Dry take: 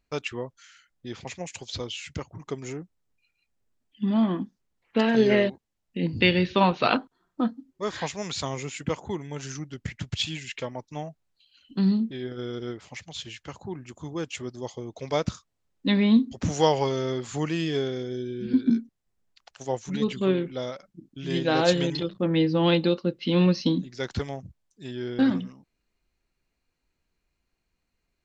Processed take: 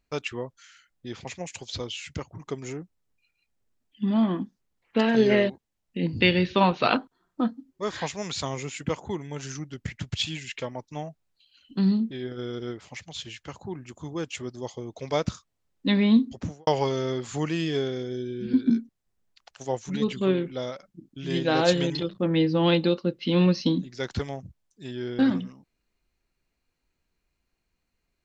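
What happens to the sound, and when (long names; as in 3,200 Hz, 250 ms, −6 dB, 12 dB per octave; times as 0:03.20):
0:16.27–0:16.67: fade out and dull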